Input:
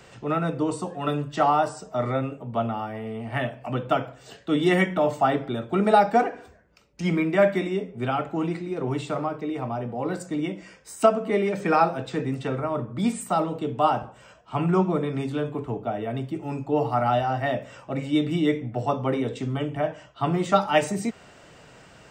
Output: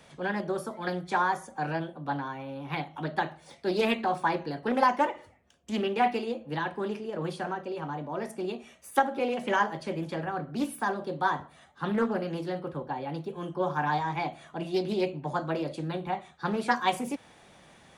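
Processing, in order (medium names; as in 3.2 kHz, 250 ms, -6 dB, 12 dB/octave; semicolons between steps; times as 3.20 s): tape speed +23%; loudspeaker Doppler distortion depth 0.23 ms; trim -5.5 dB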